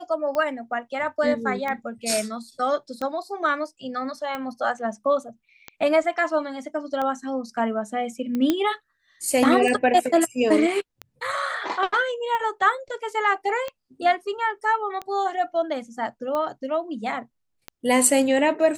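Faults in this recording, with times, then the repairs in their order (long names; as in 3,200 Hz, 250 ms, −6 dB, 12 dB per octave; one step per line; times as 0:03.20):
scratch tick 45 rpm −16 dBFS
0:08.50: click −8 dBFS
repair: click removal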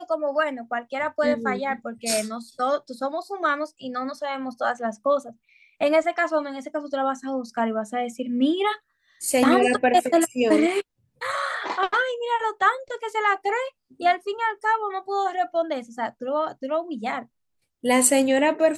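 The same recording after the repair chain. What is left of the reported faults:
none of them is left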